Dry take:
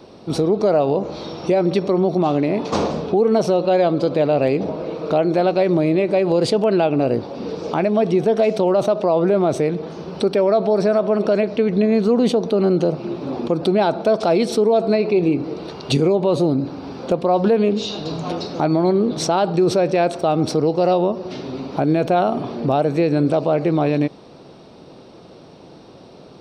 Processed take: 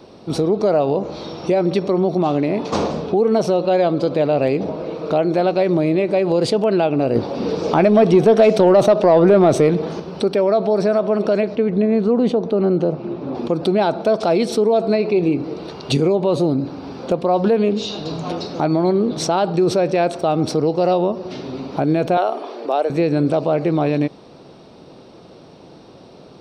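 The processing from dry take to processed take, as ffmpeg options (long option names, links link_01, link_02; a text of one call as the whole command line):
ffmpeg -i in.wav -filter_complex "[0:a]asettb=1/sr,asplit=3[link_01][link_02][link_03];[link_01]atrim=end=7.154[link_04];[link_02]atrim=start=7.15:end=10,asetpts=PTS-STARTPTS,afade=type=in:duration=0.004:curve=qsin,afade=type=out:start_time=2.846:duration=0.004:curve=qsin,acontrast=46[link_05];[link_03]atrim=start=9.996[link_06];[link_04][link_05]acrossfade=duration=0.004:curve1=hsin:curve2=qsin[link_07];[link_07][link_06]acrossfade=duration=0.004:curve1=qsin:curve2=hsin,asettb=1/sr,asplit=3[link_08][link_09][link_10];[link_08]atrim=end=11.554[link_11];[link_09]atrim=start=11.55:end=13.35,asetpts=PTS-STARTPTS,afade=type=in:duration=0.004:curve=qsin,afade=type=out:start_time=1.796:duration=0.004:curve=qsin,lowpass=frequency=1800:poles=1[link_12];[link_10]atrim=start=13.346[link_13];[link_11][link_12]acrossfade=duration=0.004:curve1=hsin:curve2=qsin[link_14];[link_14][link_13]acrossfade=duration=0.004:curve1=qsin:curve2=hsin,asettb=1/sr,asplit=3[link_15][link_16][link_17];[link_15]atrim=end=22.174[link_18];[link_16]atrim=start=22.17:end=22.9,asetpts=PTS-STARTPTS,afade=type=in:duration=0.004:curve=qsin,afade=type=out:start_time=0.726:duration=0.004:curve=qsin,highpass=frequency=370:width=0.5412,highpass=frequency=370:width=1.3066[link_19];[link_17]atrim=start=22.896[link_20];[link_18][link_19]acrossfade=duration=0.004:curve1=hsin:curve2=qsin[link_21];[link_21][link_20]acrossfade=duration=0.004:curve1=qsin:curve2=hsin" out.wav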